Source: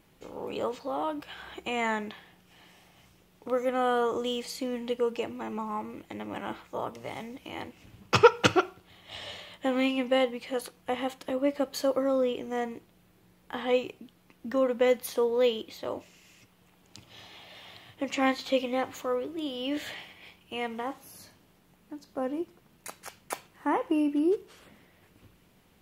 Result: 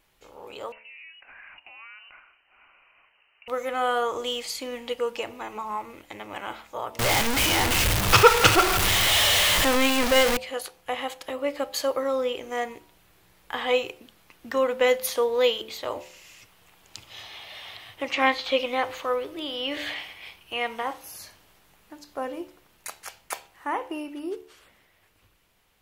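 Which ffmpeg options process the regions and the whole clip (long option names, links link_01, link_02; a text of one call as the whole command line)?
ffmpeg -i in.wav -filter_complex "[0:a]asettb=1/sr,asplit=3[link_01][link_02][link_03];[link_01]atrim=end=0.724[link_04];[link_02]atrim=start=0.72:end=3.48,asetpts=PTS-STARTPTS,afade=type=in:duration=0.004:curve=qsin,afade=type=out:start_time=2.756:duration=0.004:curve=qsin,acompressor=threshold=-40dB:ratio=12:attack=3.2:release=140:knee=1:detection=peak,highpass=430,lowpass=frequency=2700:width_type=q:width=0.5098,lowpass=frequency=2700:width_type=q:width=0.6013,lowpass=frequency=2700:width_type=q:width=0.9,lowpass=frequency=2700:width_type=q:width=2.563,afreqshift=-3200[link_05];[link_03]atrim=start=3.476[link_06];[link_04][link_05]acrossfade=duration=0.004:curve1=hsin:curve2=qsin[link_07];[link_07][link_06]acrossfade=duration=0.004:curve1=qsin:curve2=hsin,asettb=1/sr,asplit=3[link_08][link_09][link_10];[link_08]atrim=end=6.994[link_11];[link_09]atrim=start=6.99:end=10.37,asetpts=PTS-STARTPTS,afade=type=in:duration=0.004:curve=qsin,afade=type=out:start_time=3.376:duration=0.004:curve=qsin,aeval=exprs='val(0)+0.5*0.106*sgn(val(0))':channel_layout=same,lowshelf=frequency=210:gain=6[link_12];[link_10]atrim=start=10.366[link_13];[link_11][link_12]acrossfade=duration=0.004:curve1=hsin:curve2=qsin[link_14];[link_14][link_13]acrossfade=duration=0.004:curve1=qsin:curve2=hsin,asettb=1/sr,asplit=3[link_15][link_16][link_17];[link_15]atrim=end=17.234[link_18];[link_16]atrim=start=17.23:end=21.04,asetpts=PTS-STARTPTS,afade=type=in:duration=0.004:curve=qsin,afade=type=out:start_time=3.806:duration=0.004:curve=qsin,bandreject=frequency=7100:width=10,acrossover=split=4800[link_19][link_20];[link_20]acompressor=threshold=-58dB:ratio=4:attack=1:release=60[link_21];[link_19][link_21]amix=inputs=2:normalize=0[link_22];[link_17]atrim=start=21.036[link_23];[link_18][link_22]acrossfade=duration=0.004:curve1=hsin:curve2=qsin[link_24];[link_24][link_23]acrossfade=duration=0.004:curve1=qsin:curve2=hsin,equalizer=frequency=200:width_type=o:width=2.3:gain=-13.5,bandreject=frequency=73.47:width_type=h:width=4,bandreject=frequency=146.94:width_type=h:width=4,bandreject=frequency=220.41:width_type=h:width=4,bandreject=frequency=293.88:width_type=h:width=4,bandreject=frequency=367.35:width_type=h:width=4,bandreject=frequency=440.82:width_type=h:width=4,bandreject=frequency=514.29:width_type=h:width=4,bandreject=frequency=587.76:width_type=h:width=4,bandreject=frequency=661.23:width_type=h:width=4,bandreject=frequency=734.7:width_type=h:width=4,bandreject=frequency=808.17:width_type=h:width=4,bandreject=frequency=881.64:width_type=h:width=4,bandreject=frequency=955.11:width_type=h:width=4,dynaudnorm=framelen=630:gausssize=11:maxgain=9dB" out.wav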